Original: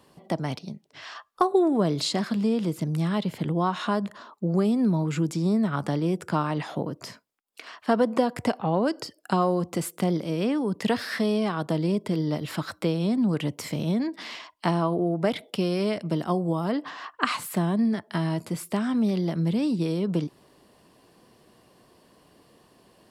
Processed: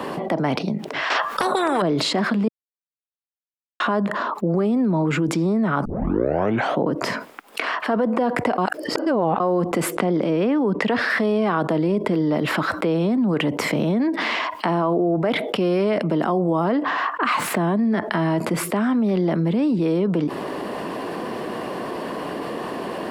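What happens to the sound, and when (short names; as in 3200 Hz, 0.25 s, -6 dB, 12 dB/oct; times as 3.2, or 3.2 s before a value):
1.1–1.82 spectral compressor 4:1
2.48–3.8 mute
5.85 tape start 0.92 s
8.58–9.4 reverse
9.95–11.1 Bessel low-pass 6700 Hz
16.64–18.24 median filter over 3 samples
whole clip: limiter -18.5 dBFS; three-band isolator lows -16 dB, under 190 Hz, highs -15 dB, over 2600 Hz; fast leveller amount 70%; gain +5.5 dB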